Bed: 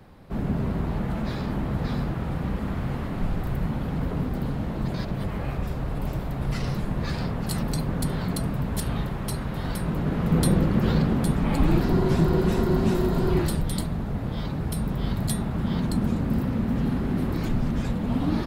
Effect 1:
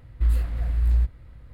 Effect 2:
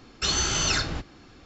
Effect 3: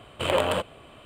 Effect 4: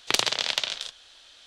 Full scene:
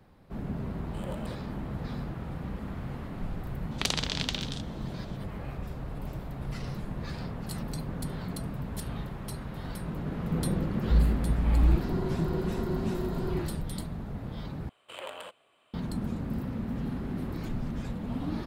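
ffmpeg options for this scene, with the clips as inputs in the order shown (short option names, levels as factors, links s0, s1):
-filter_complex "[3:a]asplit=2[s0][s1];[0:a]volume=0.376[s2];[s0]equalizer=f=1900:w=0.6:g=-14.5[s3];[s1]highpass=f=820:p=1[s4];[s2]asplit=2[s5][s6];[s5]atrim=end=14.694[s7];[s4]atrim=end=1.05,asetpts=PTS-STARTPTS,volume=0.2[s8];[s6]atrim=start=15.736[s9];[s3]atrim=end=1.05,asetpts=PTS-STARTPTS,volume=0.2,afade=t=in:d=0.004:c=hsin,afade=t=out:st=1.046:d=0.004:c=hsin,adelay=740[s10];[4:a]atrim=end=1.46,asetpts=PTS-STARTPTS,volume=0.473,afade=t=in:d=0.004:c=hsin,afade=t=out:st=1.456:d=0.004:c=hsin,adelay=3710[s11];[1:a]atrim=end=1.53,asetpts=PTS-STARTPTS,volume=0.75,afade=t=in:d=0.004:c=hsin,afade=t=out:st=1.526:d=0.004:c=hsin,adelay=10700[s12];[s7][s8]acrossfade=d=0.004:c1=hsin:c2=hsin[s13];[s13][s9]acrossfade=d=0.004:c1=hsin:c2=hsin[s14];[s14][s10][s11][s12]amix=inputs=4:normalize=0"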